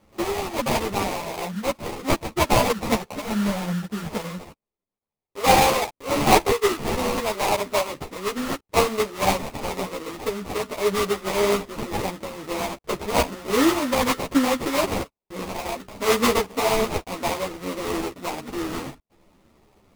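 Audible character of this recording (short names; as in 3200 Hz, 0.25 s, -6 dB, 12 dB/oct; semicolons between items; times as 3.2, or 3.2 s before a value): aliases and images of a low sample rate 1600 Hz, jitter 20%; a shimmering, thickened sound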